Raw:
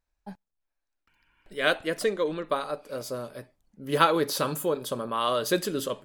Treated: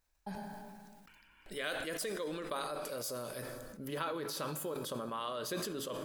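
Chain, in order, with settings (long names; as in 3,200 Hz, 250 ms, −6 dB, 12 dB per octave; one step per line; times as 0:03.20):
high-shelf EQ 5,200 Hz +6 dB, from 0:01.64 +11 dB, from 0:03.88 −2 dB
downward compressor 4 to 1, threshold −42 dBFS, peak gain reduction 22 dB
low-shelf EQ 440 Hz −3 dB
convolution reverb RT60 2.6 s, pre-delay 7 ms, DRR 13 dB
level that may fall only so fast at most 25 dB per second
level +2.5 dB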